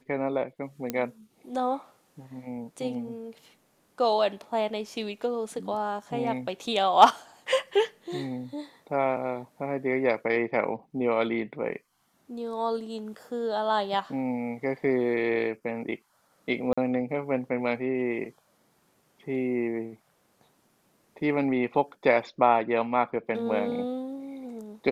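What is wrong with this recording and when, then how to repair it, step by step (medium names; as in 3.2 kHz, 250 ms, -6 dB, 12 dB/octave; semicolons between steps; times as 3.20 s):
0.90 s: pop -14 dBFS
16.73–16.77 s: dropout 45 ms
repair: de-click; interpolate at 16.73 s, 45 ms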